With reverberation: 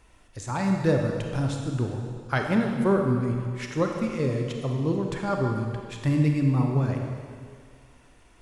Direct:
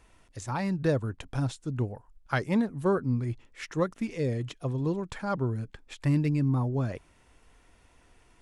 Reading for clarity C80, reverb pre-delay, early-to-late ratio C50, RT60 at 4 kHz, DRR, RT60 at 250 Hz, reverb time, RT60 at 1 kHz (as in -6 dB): 4.0 dB, 28 ms, 3.0 dB, 2.0 s, 2.0 dB, 2.0 s, 2.0 s, 2.1 s